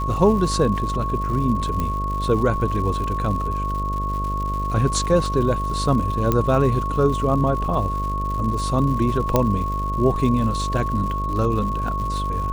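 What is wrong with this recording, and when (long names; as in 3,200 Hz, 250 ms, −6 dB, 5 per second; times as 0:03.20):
mains buzz 50 Hz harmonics 13 −26 dBFS
surface crackle 190 per second −30 dBFS
whistle 1,100 Hz −25 dBFS
0:01.80: click −12 dBFS
0:06.32: click −7 dBFS
0:09.36: click −4 dBFS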